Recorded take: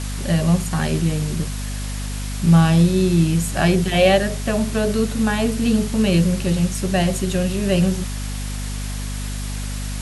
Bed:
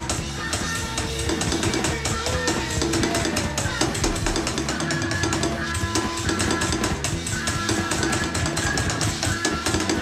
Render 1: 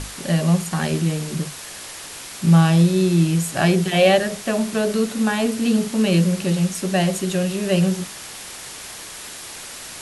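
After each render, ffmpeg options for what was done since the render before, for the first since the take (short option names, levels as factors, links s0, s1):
-af "bandreject=f=50:t=h:w=6,bandreject=f=100:t=h:w=6,bandreject=f=150:t=h:w=6,bandreject=f=200:t=h:w=6,bandreject=f=250:t=h:w=6"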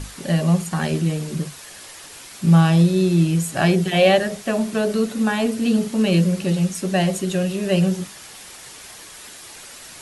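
-af "afftdn=nr=6:nf=-36"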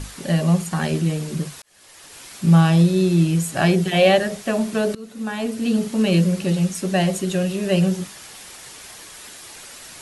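-filter_complex "[0:a]asplit=3[s0][s1][s2];[s0]atrim=end=1.62,asetpts=PTS-STARTPTS,afade=t=out:st=1.616:d=0.004:c=hsin[s3];[s1]atrim=start=1.62:end=4.95,asetpts=PTS-STARTPTS,afade=t=in:d=0.66,afade=t=out:st=3.326:d=0.004:c=hsin:silence=0.0749894[s4];[s2]atrim=start=4.95,asetpts=PTS-STARTPTS,afade=t=in:d=1.24:c=qsin:silence=0.0749894[s5];[s3][s4][s5]concat=n=3:v=0:a=1"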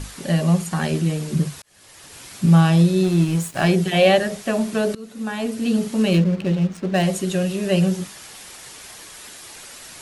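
-filter_complex "[0:a]asettb=1/sr,asplit=3[s0][s1][s2];[s0]atrim=end=1.324[s3];[s1]atrim=start=1.32:end=2.47,asetpts=PTS-STARTPTS,afade=t=in:d=0.004:c=qsin,afade=t=out:st=1.146:d=0.004:c=qsin,equalizer=f=100:t=o:w=2.3:g=7.5[s4];[s2]atrim=start=2.466[s5];[s3][s4]acrossfade=d=0.004:c1=hsin:c2=qsin[s6];[s6][s5]acrossfade=d=0.004:c1=qsin:c2=hsin,asettb=1/sr,asplit=3[s7][s8][s9];[s7]atrim=end=3.034[s10];[s8]atrim=start=3.03:end=3.69,asetpts=PTS-STARTPTS,afade=t=in:d=0.004:c=qsin,afade=t=out:st=0.656:d=0.004:c=qsin,aeval=exprs='sgn(val(0))*max(abs(val(0))-0.0211,0)':c=same[s11];[s9]atrim=start=3.686[s12];[s10][s11]acrossfade=d=0.004:c1=hsin:c2=qsin[s13];[s13][s12]acrossfade=d=0.004:c1=qsin:c2=hsin,asettb=1/sr,asplit=3[s14][s15][s16];[s14]atrim=end=6.134[s17];[s15]atrim=start=6.13:end=7.03,asetpts=PTS-STARTPTS,afade=t=in:d=0.004:c=qsin,afade=t=out:st=0.896:d=0.004:c=qsin,adynamicsmooth=sensitivity=4:basefreq=1300[s18];[s16]atrim=start=7.026[s19];[s17][s18]acrossfade=d=0.004:c1=hsin:c2=qsin[s20];[s20][s19]acrossfade=d=0.004:c1=qsin:c2=hsin"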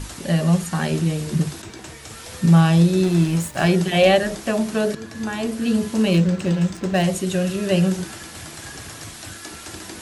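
-filter_complex "[1:a]volume=0.178[s0];[0:a][s0]amix=inputs=2:normalize=0"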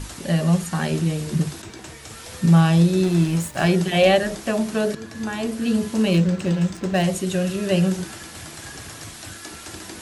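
-af "volume=0.891"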